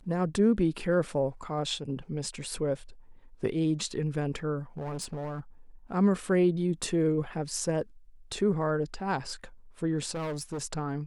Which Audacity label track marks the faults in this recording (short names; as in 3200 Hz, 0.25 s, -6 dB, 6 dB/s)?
4.770000	5.400000	clipped -31.5 dBFS
10.110000	10.620000	clipped -30.5 dBFS